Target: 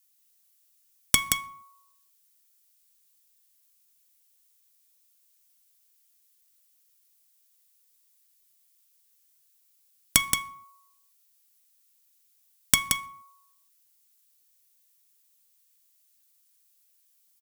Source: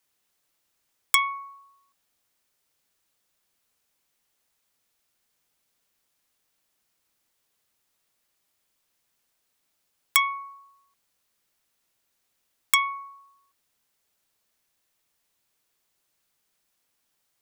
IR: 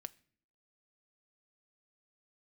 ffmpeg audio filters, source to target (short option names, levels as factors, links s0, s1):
-filter_complex "[0:a]aderivative,aeval=exprs='1.19*(cos(1*acos(clip(val(0)/1.19,-1,1)))-cos(1*PI/2))+0.299*(cos(2*acos(clip(val(0)/1.19,-1,1)))-cos(2*PI/2))+0.0531*(cos(5*acos(clip(val(0)/1.19,-1,1)))-cos(5*PI/2))+0.106*(cos(8*acos(clip(val(0)/1.19,-1,1)))-cos(8*PI/2))':c=same,aeval=exprs='(mod(1.88*val(0)+1,2)-1)/1.88':c=same,aecho=1:1:175:0.531[s0];[1:a]atrim=start_sample=2205,afade=t=out:st=0.35:d=0.01,atrim=end_sample=15876[s1];[s0][s1]afir=irnorm=-1:irlink=0,volume=2.51"